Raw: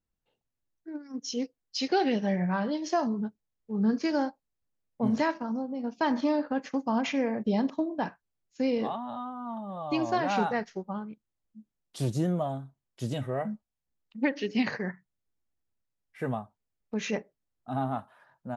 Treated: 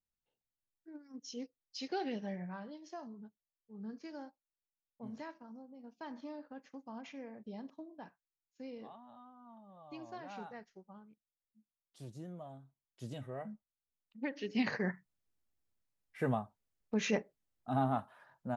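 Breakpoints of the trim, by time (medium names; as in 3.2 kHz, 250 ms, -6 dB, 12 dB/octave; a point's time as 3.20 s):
2.21 s -12 dB
2.81 s -19.5 dB
12.29 s -19.5 dB
13.04 s -12 dB
14.25 s -12 dB
14.84 s -1.5 dB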